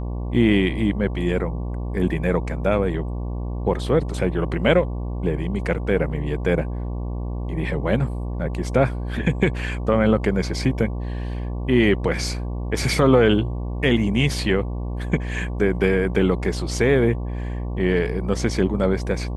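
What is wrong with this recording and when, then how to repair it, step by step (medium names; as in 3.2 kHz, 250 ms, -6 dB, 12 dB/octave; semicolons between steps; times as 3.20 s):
buzz 60 Hz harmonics 19 -27 dBFS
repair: de-hum 60 Hz, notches 19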